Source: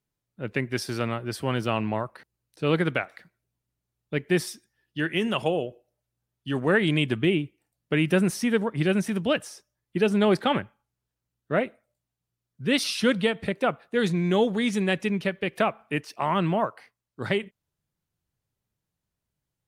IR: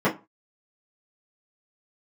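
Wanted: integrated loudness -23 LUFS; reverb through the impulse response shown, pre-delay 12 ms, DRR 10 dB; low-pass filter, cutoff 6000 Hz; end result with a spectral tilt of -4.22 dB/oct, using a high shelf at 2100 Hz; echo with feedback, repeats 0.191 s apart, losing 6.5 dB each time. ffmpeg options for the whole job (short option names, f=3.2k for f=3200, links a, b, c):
-filter_complex "[0:a]lowpass=6k,highshelf=f=2.1k:g=6,aecho=1:1:191|382|573|764|955|1146:0.473|0.222|0.105|0.0491|0.0231|0.0109,asplit=2[a][b];[1:a]atrim=start_sample=2205,adelay=12[c];[b][c]afir=irnorm=-1:irlink=0,volume=-26.5dB[d];[a][d]amix=inputs=2:normalize=0,volume=0.5dB"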